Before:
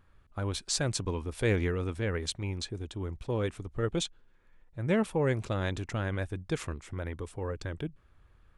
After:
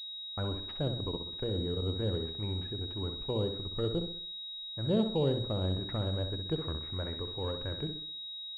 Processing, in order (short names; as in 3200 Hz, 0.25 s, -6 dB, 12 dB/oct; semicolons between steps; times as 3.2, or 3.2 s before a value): treble ducked by the level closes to 730 Hz, closed at -27 dBFS; notches 60/120/180/240/300/360 Hz; gate -52 dBFS, range -18 dB; 1.07–1.82 level quantiser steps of 16 dB; on a send: flutter echo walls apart 11 m, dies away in 0.51 s; on the sum: pulse-width modulation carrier 3800 Hz; gain -1 dB